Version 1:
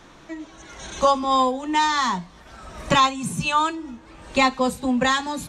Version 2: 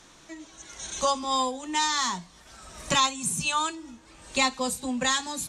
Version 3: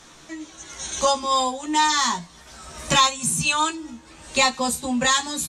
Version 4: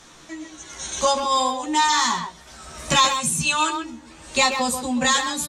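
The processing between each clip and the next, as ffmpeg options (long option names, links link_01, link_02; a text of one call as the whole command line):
ffmpeg -i in.wav -af "equalizer=frequency=8500:width_type=o:width=2.2:gain=14.5,volume=-8.5dB" out.wav
ffmpeg -i in.wav -filter_complex "[0:a]asplit=2[link_01][link_02];[link_02]adelay=13,volume=-3.5dB[link_03];[link_01][link_03]amix=inputs=2:normalize=0,acontrast=40,volume=-1.5dB" out.wav
ffmpeg -i in.wav -filter_complex "[0:a]asplit=2[link_01][link_02];[link_02]adelay=130,highpass=300,lowpass=3400,asoftclip=type=hard:threshold=-14.5dB,volume=-6dB[link_03];[link_01][link_03]amix=inputs=2:normalize=0" out.wav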